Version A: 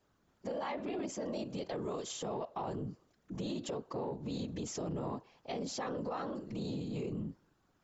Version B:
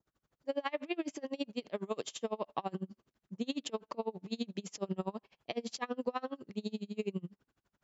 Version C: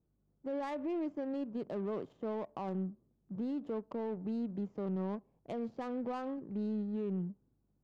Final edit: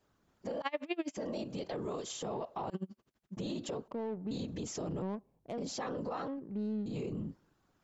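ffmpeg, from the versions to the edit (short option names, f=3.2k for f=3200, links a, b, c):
-filter_complex "[1:a]asplit=2[a][b];[2:a]asplit=3[c][d][e];[0:a]asplit=6[f][g][h][i][j][k];[f]atrim=end=0.622[l];[a]atrim=start=0.618:end=1.172[m];[g]atrim=start=1.168:end=2.702[n];[b]atrim=start=2.698:end=3.372[o];[h]atrim=start=3.368:end=3.882[p];[c]atrim=start=3.878:end=4.312[q];[i]atrim=start=4.308:end=5.022[r];[d]atrim=start=5.018:end=5.582[s];[j]atrim=start=5.578:end=6.282[t];[e]atrim=start=6.278:end=6.862[u];[k]atrim=start=6.858[v];[l][m]acrossfade=d=0.004:c1=hsin:c2=hsin[w];[w][n]acrossfade=d=0.004:c1=hsin:c2=hsin[x];[x][o]acrossfade=d=0.004:c1=hsin:c2=hsin[y];[y][p]acrossfade=d=0.004:c1=hsin:c2=hsin[z];[z][q]acrossfade=d=0.004:c1=hsin:c2=hsin[aa];[aa][r]acrossfade=d=0.004:c1=hsin:c2=hsin[ab];[ab][s]acrossfade=d=0.004:c1=hsin:c2=hsin[ac];[ac][t]acrossfade=d=0.004:c1=hsin:c2=hsin[ad];[ad][u]acrossfade=d=0.004:c1=hsin:c2=hsin[ae];[ae][v]acrossfade=d=0.004:c1=hsin:c2=hsin"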